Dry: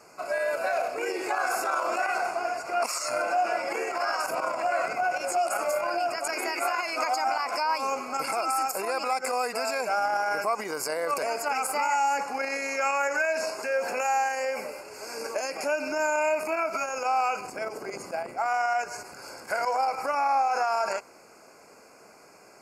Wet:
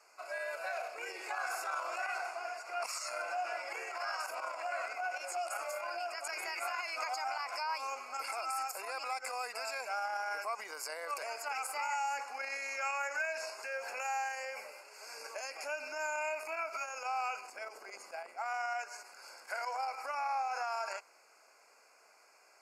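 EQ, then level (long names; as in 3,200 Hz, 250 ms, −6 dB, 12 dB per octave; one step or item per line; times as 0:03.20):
high-pass filter 910 Hz 12 dB per octave
parametric band 1,200 Hz −3.5 dB 1.5 octaves
high-shelf EQ 5,600 Hz −7 dB
−4.5 dB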